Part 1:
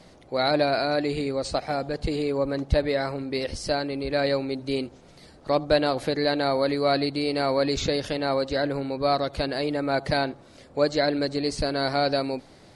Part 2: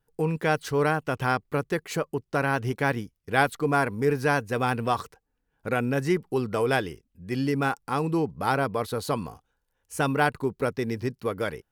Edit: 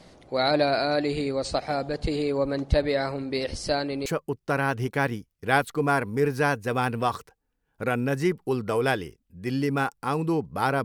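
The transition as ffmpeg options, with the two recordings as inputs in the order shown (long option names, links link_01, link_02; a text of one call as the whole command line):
ffmpeg -i cue0.wav -i cue1.wav -filter_complex "[0:a]apad=whole_dur=10.84,atrim=end=10.84,atrim=end=4.062[link_01];[1:a]atrim=start=1.908:end=8.69[link_02];[link_01][link_02]acrossfade=duration=0.004:curve1=hsin:curve2=hsin" out.wav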